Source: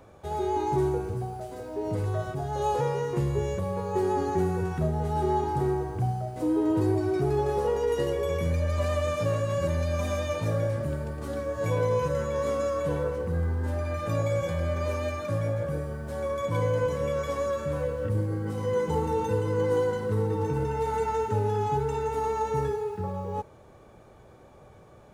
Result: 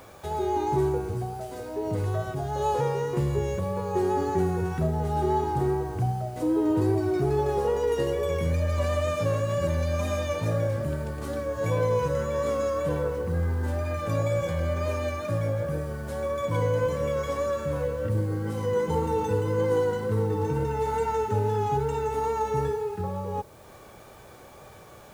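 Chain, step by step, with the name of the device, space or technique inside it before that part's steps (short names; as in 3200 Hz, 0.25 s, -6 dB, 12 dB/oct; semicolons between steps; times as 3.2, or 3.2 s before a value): noise-reduction cassette on a plain deck (mismatched tape noise reduction encoder only; wow and flutter 25 cents; white noise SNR 34 dB); gain +1 dB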